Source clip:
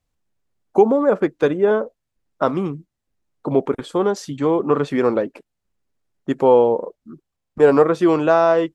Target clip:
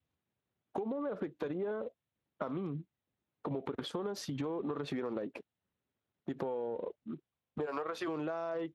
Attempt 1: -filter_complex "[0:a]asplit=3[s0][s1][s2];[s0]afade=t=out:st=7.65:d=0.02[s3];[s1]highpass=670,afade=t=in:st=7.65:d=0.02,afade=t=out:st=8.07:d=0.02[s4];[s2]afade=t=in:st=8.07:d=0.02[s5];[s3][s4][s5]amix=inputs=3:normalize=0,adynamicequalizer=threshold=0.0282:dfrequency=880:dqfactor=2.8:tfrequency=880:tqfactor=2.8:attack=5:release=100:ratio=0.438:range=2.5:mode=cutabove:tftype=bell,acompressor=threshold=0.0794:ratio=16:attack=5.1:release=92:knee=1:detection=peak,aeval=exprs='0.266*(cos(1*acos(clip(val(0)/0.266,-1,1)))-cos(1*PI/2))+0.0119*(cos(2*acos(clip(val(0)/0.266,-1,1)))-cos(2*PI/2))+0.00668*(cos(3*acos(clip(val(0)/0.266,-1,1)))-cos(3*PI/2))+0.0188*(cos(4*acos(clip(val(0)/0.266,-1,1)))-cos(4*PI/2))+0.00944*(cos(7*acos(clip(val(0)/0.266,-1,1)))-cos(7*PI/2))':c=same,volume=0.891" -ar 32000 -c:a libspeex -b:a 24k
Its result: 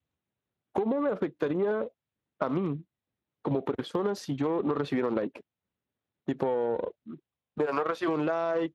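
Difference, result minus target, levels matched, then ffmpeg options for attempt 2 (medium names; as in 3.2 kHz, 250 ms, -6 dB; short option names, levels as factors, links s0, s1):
compression: peak gain reduction -7.5 dB
-filter_complex "[0:a]asplit=3[s0][s1][s2];[s0]afade=t=out:st=7.65:d=0.02[s3];[s1]highpass=670,afade=t=in:st=7.65:d=0.02,afade=t=out:st=8.07:d=0.02[s4];[s2]afade=t=in:st=8.07:d=0.02[s5];[s3][s4][s5]amix=inputs=3:normalize=0,adynamicequalizer=threshold=0.0282:dfrequency=880:dqfactor=2.8:tfrequency=880:tqfactor=2.8:attack=5:release=100:ratio=0.438:range=2.5:mode=cutabove:tftype=bell,acompressor=threshold=0.0316:ratio=16:attack=5.1:release=92:knee=1:detection=peak,aeval=exprs='0.266*(cos(1*acos(clip(val(0)/0.266,-1,1)))-cos(1*PI/2))+0.0119*(cos(2*acos(clip(val(0)/0.266,-1,1)))-cos(2*PI/2))+0.00668*(cos(3*acos(clip(val(0)/0.266,-1,1)))-cos(3*PI/2))+0.0188*(cos(4*acos(clip(val(0)/0.266,-1,1)))-cos(4*PI/2))+0.00944*(cos(7*acos(clip(val(0)/0.266,-1,1)))-cos(7*PI/2))':c=same,volume=0.891" -ar 32000 -c:a libspeex -b:a 24k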